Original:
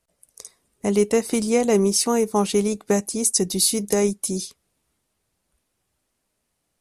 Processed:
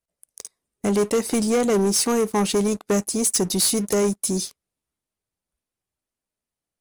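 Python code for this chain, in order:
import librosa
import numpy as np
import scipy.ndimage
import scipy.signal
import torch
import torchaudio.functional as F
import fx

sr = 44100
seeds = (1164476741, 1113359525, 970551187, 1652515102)

y = fx.leveller(x, sr, passes=3)
y = y * librosa.db_to_amplitude(-8.0)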